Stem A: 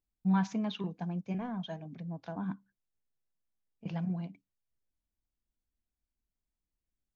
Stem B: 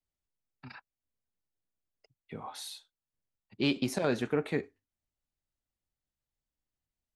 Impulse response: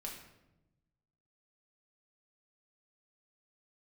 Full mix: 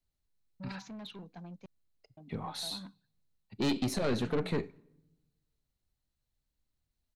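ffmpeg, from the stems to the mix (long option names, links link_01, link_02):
-filter_complex "[0:a]highpass=frequency=220:poles=1,asoftclip=type=tanh:threshold=-37dB,adelay=350,volume=-4.5dB,asplit=3[link_01][link_02][link_03];[link_01]atrim=end=1.66,asetpts=PTS-STARTPTS,afade=type=out:start_time=1.656:duration=0.004:curve=hsin[link_04];[link_02]atrim=start=1.66:end=2.17,asetpts=PTS-STARTPTS,volume=0[link_05];[link_03]atrim=start=2.17,asetpts=PTS-STARTPTS,afade=type=in:duration=0.004:curve=hsin[link_06];[link_04][link_05][link_06]concat=n=3:v=0:a=1[link_07];[1:a]lowshelf=frequency=230:gain=9.5,aeval=exprs='(tanh(22.4*val(0)+0.25)-tanh(0.25))/22.4':channel_layout=same,volume=0.5dB,asplit=2[link_08][link_09];[link_09]volume=-16.5dB[link_10];[2:a]atrim=start_sample=2205[link_11];[link_10][link_11]afir=irnorm=-1:irlink=0[link_12];[link_07][link_08][link_12]amix=inputs=3:normalize=0,equalizer=frequency=4100:width=7:gain=9"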